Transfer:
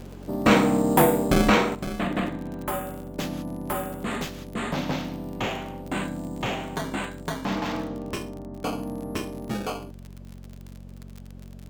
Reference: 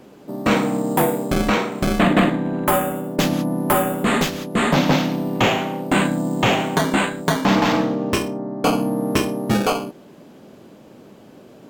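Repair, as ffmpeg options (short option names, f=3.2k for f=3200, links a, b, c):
-af "adeclick=t=4,bandreject=f=45.9:t=h:w=4,bandreject=f=91.8:t=h:w=4,bandreject=f=137.7:t=h:w=4,bandreject=f=183.6:t=h:w=4,bandreject=f=229.5:t=h:w=4,asetnsamples=n=441:p=0,asendcmd='1.75 volume volume 11.5dB',volume=0dB"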